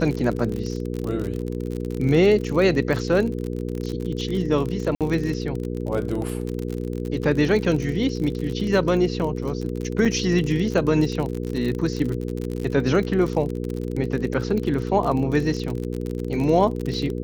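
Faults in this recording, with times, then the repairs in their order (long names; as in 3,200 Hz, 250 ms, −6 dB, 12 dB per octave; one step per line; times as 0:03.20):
surface crackle 41 per second −26 dBFS
mains hum 60 Hz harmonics 8 −28 dBFS
0:04.95–0:05.01: drop-out 57 ms
0:10.05–0:10.06: drop-out 5.9 ms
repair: click removal
hum removal 60 Hz, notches 8
repair the gap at 0:04.95, 57 ms
repair the gap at 0:10.05, 5.9 ms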